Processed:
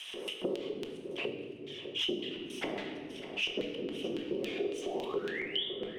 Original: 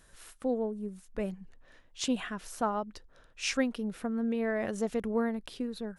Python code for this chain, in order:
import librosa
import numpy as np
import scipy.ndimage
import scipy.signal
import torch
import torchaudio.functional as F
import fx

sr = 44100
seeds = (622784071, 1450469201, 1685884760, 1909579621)

p1 = fx.lower_of_two(x, sr, delay_ms=0.33)
p2 = scipy.signal.sosfilt(scipy.signal.butter(2, 190.0, 'highpass', fs=sr, output='sos'), p1)
p3 = fx.echo_feedback(p2, sr, ms=70, feedback_pct=48, wet_db=-15)
p4 = fx.spec_paint(p3, sr, seeds[0], shape='rise', start_s=4.6, length_s=1.05, low_hz=340.0, high_hz=3700.0, level_db=-30.0)
p5 = fx.whisperise(p4, sr, seeds[1])
p6 = fx.filter_lfo_bandpass(p5, sr, shape='square', hz=3.6, low_hz=390.0, high_hz=3000.0, q=5.6)
p7 = fx.high_shelf(p6, sr, hz=5000.0, db=12.0)
p8 = p7 + fx.echo_single(p7, sr, ms=602, db=-23.0, dry=0)
p9 = fx.room_shoebox(p8, sr, seeds[2], volume_m3=340.0, walls='mixed', distance_m=1.0)
p10 = fx.band_squash(p9, sr, depth_pct=100)
y = p10 * 10.0 ** (3.0 / 20.0)